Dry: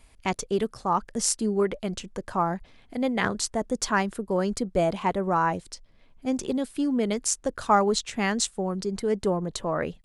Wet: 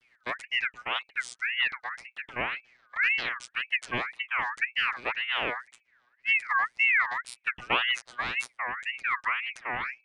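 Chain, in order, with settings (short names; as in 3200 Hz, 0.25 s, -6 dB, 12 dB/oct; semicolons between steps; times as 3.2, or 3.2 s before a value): vocoder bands 16, saw 122 Hz; ring modulator with a swept carrier 1900 Hz, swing 30%, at 1.9 Hz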